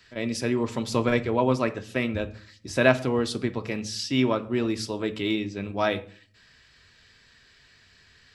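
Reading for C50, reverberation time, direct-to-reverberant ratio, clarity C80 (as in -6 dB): 16.0 dB, 0.45 s, 8.0 dB, 20.0 dB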